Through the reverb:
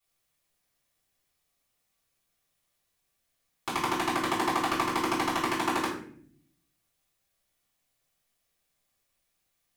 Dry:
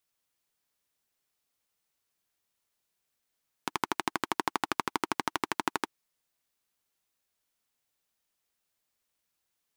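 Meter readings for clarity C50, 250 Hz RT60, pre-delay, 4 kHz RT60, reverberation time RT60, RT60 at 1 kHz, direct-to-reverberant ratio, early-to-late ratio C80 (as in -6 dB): 5.0 dB, 1.0 s, 3 ms, 0.40 s, 0.55 s, 0.45 s, -9.5 dB, 8.5 dB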